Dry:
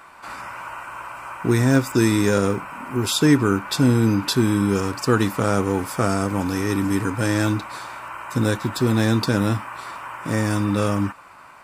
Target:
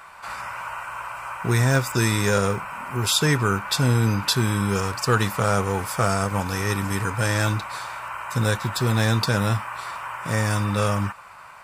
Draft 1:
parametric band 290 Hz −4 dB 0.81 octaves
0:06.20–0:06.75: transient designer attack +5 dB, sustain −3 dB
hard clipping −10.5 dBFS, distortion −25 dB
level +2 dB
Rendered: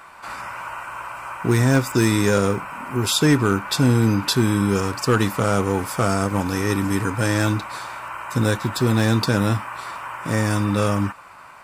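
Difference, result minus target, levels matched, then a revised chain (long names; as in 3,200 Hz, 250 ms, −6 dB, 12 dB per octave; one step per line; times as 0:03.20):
250 Hz band +3.5 dB
parametric band 290 Hz −14.5 dB 0.81 octaves
0:06.20–0:06.75: transient designer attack +5 dB, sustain −3 dB
hard clipping −10.5 dBFS, distortion −35 dB
level +2 dB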